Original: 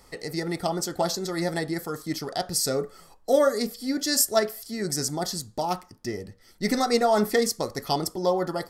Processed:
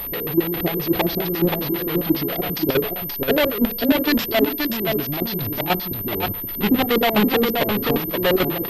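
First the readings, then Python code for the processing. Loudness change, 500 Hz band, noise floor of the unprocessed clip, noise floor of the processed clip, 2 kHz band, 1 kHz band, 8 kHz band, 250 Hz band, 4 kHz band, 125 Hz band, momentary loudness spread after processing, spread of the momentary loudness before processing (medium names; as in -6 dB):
+5.5 dB, +3.5 dB, -55 dBFS, -29 dBFS, +9.0 dB, +2.5 dB, -14.5 dB, +9.0 dB, +5.0 dB, +7.5 dB, 6 LU, 11 LU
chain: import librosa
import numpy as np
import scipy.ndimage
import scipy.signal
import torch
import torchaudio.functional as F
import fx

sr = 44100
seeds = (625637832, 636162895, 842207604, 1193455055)

p1 = fx.halfwave_hold(x, sr)
p2 = fx.level_steps(p1, sr, step_db=21)
p3 = fx.power_curve(p2, sr, exponent=0.5)
p4 = fx.filter_lfo_lowpass(p3, sr, shape='square', hz=7.4, low_hz=340.0, high_hz=3400.0, q=2.0)
p5 = p4 + fx.echo_single(p4, sr, ms=527, db=-4.5, dry=0)
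y = fx.pwm(p5, sr, carrier_hz=13000.0)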